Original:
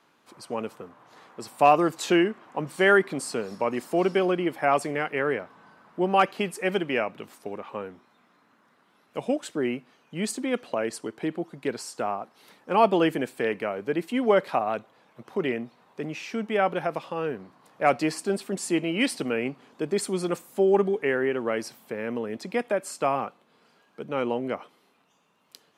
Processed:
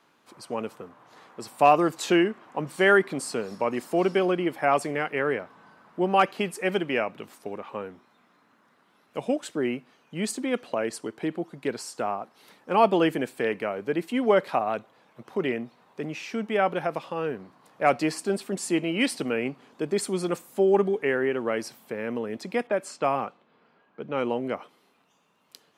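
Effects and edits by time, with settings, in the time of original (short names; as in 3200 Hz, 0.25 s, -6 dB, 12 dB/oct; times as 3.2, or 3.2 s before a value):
22.67–24.37 low-pass opened by the level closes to 2100 Hz, open at -22 dBFS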